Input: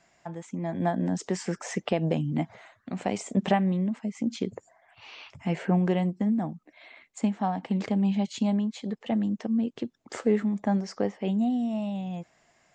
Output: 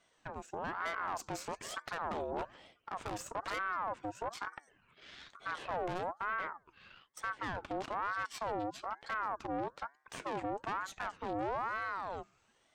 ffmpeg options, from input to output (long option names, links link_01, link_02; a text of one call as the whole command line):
ffmpeg -i in.wav -af "aeval=exprs='(tanh(44.7*val(0)+0.75)-tanh(0.75))/44.7':channel_layout=same,bandreject=frequency=142.4:width_type=h:width=4,bandreject=frequency=284.8:width_type=h:width=4,bandreject=frequency=427.2:width_type=h:width=4,bandreject=frequency=569.6:width_type=h:width=4,bandreject=frequency=712:width_type=h:width=4,bandreject=frequency=854.4:width_type=h:width=4,bandreject=frequency=996.8:width_type=h:width=4,aeval=exprs='val(0)*sin(2*PI*930*n/s+930*0.45/1.1*sin(2*PI*1.1*n/s))':channel_layout=same" out.wav